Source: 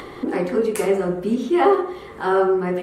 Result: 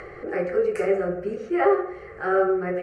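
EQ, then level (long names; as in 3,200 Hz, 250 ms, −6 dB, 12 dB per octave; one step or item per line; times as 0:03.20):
low-pass filter 4,000 Hz 12 dB per octave
phaser with its sweep stopped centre 960 Hz, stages 6
0.0 dB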